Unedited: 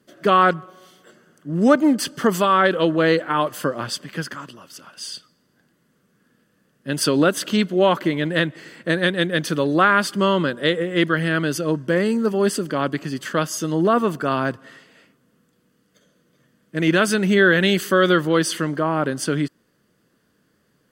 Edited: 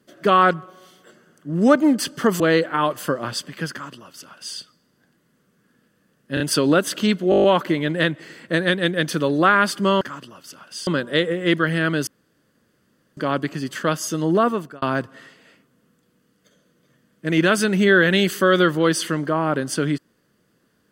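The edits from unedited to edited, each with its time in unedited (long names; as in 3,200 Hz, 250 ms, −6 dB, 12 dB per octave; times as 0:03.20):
0:02.40–0:02.96: remove
0:04.27–0:05.13: duplicate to 0:10.37
0:06.90: stutter 0.03 s, 3 plays
0:07.80: stutter 0.02 s, 8 plays
0:11.57–0:12.67: fill with room tone
0:13.91–0:14.32: fade out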